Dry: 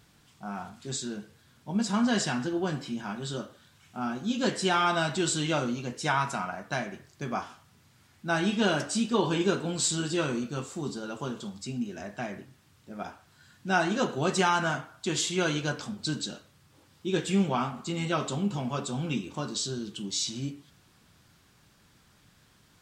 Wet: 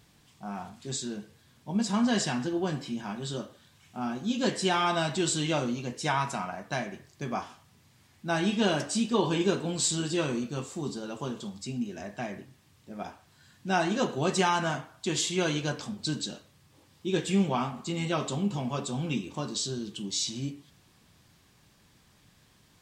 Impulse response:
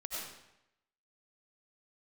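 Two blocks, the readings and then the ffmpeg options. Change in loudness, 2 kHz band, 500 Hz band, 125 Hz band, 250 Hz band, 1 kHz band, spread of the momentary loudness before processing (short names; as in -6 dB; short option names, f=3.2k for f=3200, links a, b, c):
-0.5 dB, -2.5 dB, 0.0 dB, 0.0 dB, 0.0 dB, -1.0 dB, 14 LU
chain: -af "equalizer=f=1.4k:w=6.1:g=-7"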